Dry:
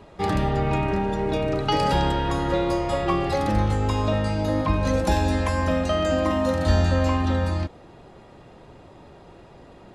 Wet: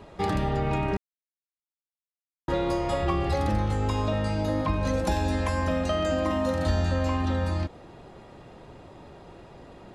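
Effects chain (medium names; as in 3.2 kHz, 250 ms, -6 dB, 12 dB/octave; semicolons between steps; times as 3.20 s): 3.00–3.55 s: peaking EQ 72 Hz +10.5 dB 0.71 oct; compression 2:1, threshold -25 dBFS, peak gain reduction 6.5 dB; 0.97–2.48 s: mute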